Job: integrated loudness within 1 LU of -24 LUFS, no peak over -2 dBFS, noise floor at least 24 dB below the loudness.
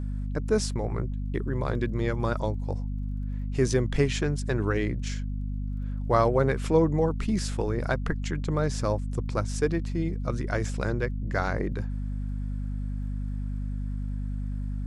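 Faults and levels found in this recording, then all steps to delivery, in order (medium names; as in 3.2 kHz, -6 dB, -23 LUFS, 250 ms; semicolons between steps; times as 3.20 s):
tick rate 21 per s; hum 50 Hz; highest harmonic 250 Hz; hum level -28 dBFS; loudness -29.0 LUFS; peak level -9.0 dBFS; loudness target -24.0 LUFS
-> de-click; de-hum 50 Hz, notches 5; trim +5 dB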